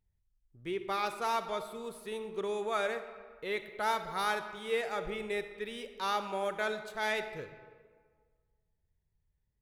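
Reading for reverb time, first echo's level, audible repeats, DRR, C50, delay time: 1.6 s, no echo, no echo, 9.0 dB, 9.5 dB, no echo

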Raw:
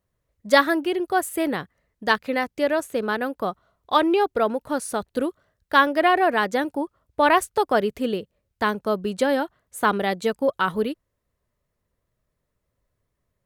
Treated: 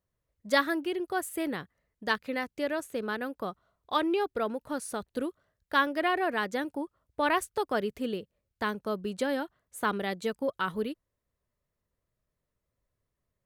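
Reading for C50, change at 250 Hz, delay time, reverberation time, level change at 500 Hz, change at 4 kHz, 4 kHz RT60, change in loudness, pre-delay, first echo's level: no reverb, -7.5 dB, no echo, no reverb, -9.0 dB, -7.0 dB, no reverb, -8.5 dB, no reverb, no echo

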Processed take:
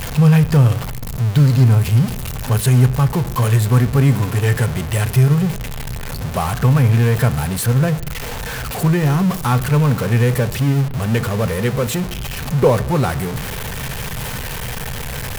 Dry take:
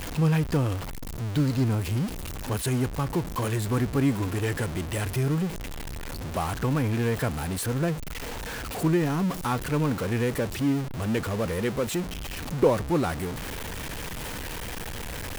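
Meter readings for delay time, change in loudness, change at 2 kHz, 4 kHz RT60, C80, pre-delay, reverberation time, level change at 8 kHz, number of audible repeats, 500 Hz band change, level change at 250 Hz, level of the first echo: no echo, +11.0 dB, +8.5 dB, 0.90 s, 19.0 dB, 3 ms, 0.90 s, +8.5 dB, no echo, +7.0 dB, +7.5 dB, no echo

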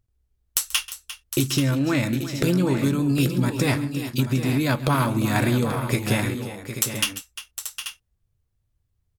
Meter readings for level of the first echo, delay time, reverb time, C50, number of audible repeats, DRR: -18.0 dB, 135 ms, no reverb, no reverb, 4, no reverb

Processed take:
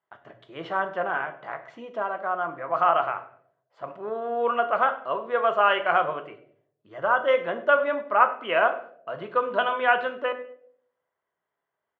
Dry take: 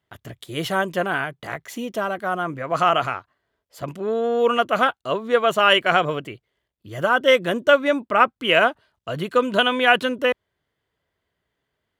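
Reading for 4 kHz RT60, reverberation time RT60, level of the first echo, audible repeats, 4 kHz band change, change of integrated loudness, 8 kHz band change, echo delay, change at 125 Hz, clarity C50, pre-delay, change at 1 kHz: 0.45 s, 0.65 s, -20.0 dB, 2, -13.5 dB, -4.5 dB, no reading, 102 ms, -15.5 dB, 12.0 dB, 5 ms, -2.0 dB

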